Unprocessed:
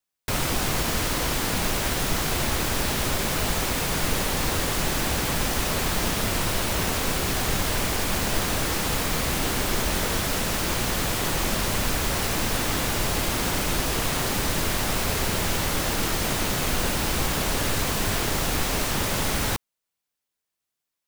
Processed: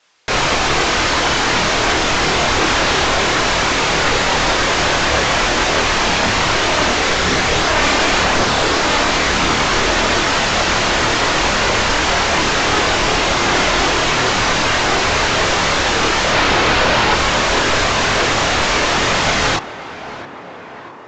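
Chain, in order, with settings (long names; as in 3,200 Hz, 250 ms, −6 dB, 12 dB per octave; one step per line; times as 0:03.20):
0:16.32–0:17.14: running median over 5 samples
mid-hump overdrive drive 37 dB, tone 2,700 Hz, clips at −10.5 dBFS
downsampling to 16,000 Hz
on a send: tape delay 661 ms, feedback 80%, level −13 dB, low-pass 2,000 Hz
on the sum: multi-voice chorus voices 4, 0.46 Hz, delay 27 ms, depth 1.7 ms
level +7.5 dB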